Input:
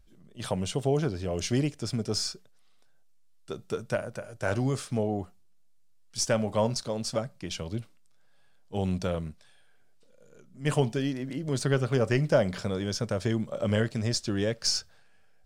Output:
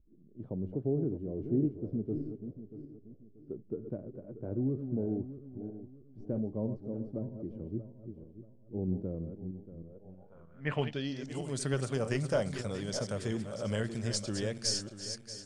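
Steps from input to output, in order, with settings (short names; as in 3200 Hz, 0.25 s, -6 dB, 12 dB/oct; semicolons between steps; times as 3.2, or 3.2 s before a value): regenerating reverse delay 0.317 s, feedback 56%, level -8.5 dB; low-pass sweep 330 Hz -> 9100 Hz, 9.82–11.42; gain -7.5 dB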